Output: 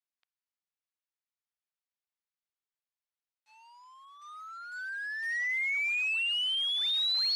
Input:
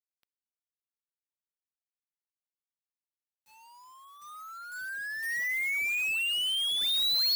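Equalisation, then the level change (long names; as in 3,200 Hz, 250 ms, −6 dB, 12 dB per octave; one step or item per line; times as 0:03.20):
band-pass filter 740–4,700 Hz
0.0 dB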